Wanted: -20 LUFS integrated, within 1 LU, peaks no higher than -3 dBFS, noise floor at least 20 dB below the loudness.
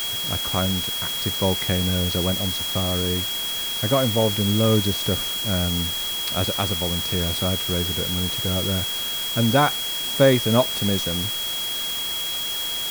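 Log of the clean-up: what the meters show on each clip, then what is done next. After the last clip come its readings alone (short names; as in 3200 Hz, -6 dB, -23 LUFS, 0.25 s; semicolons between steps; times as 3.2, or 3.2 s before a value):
steady tone 3300 Hz; tone level -26 dBFS; noise floor -27 dBFS; noise floor target -42 dBFS; loudness -21.5 LUFS; peak -4.5 dBFS; loudness target -20.0 LUFS
-> notch 3300 Hz, Q 30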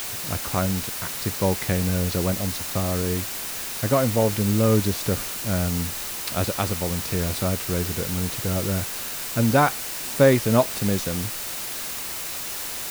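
steady tone none; noise floor -32 dBFS; noise floor target -44 dBFS
-> noise print and reduce 12 dB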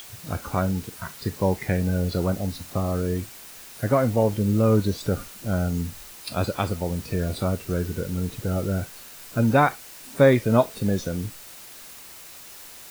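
noise floor -44 dBFS; noise floor target -45 dBFS
-> noise print and reduce 6 dB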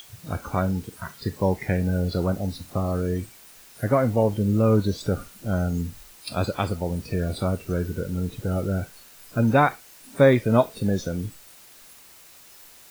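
noise floor -49 dBFS; loudness -25.0 LUFS; peak -5.5 dBFS; loudness target -20.0 LUFS
-> gain +5 dB; limiter -3 dBFS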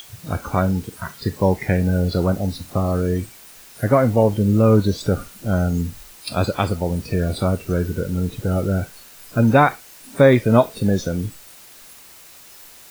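loudness -20.0 LUFS; peak -3.0 dBFS; noise floor -44 dBFS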